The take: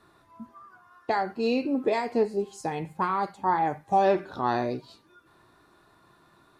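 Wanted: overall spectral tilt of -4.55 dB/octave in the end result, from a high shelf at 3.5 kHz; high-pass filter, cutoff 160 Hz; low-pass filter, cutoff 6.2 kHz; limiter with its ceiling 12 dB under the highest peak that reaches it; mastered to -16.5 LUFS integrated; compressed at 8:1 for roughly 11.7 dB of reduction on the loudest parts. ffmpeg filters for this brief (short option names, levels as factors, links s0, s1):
-af "highpass=160,lowpass=6200,highshelf=f=3500:g=6.5,acompressor=threshold=0.0316:ratio=8,volume=18.8,alimiter=limit=0.501:level=0:latency=1"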